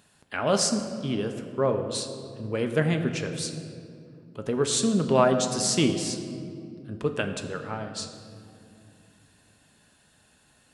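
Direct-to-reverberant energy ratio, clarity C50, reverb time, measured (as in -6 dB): 5.0 dB, 8.0 dB, 2.5 s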